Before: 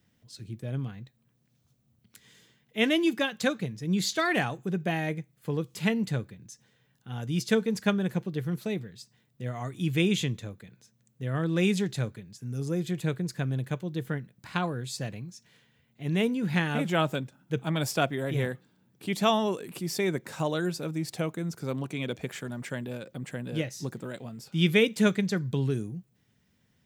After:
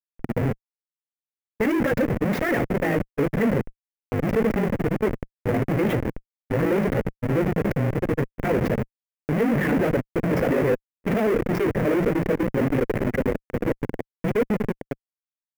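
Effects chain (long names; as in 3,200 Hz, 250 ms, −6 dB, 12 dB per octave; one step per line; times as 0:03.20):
fade-out on the ending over 6.28 s
convolution reverb RT60 0.85 s, pre-delay 3 ms, DRR 20.5 dB
comparator with hysteresis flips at −31 dBFS
time stretch by overlap-add 0.58×, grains 38 ms
graphic EQ with 10 bands 125 Hz +6 dB, 250 Hz +8 dB, 500 Hz +11 dB, 2,000 Hz +10 dB, 4,000 Hz −11 dB, 8,000 Hz −7 dB
level −3 dB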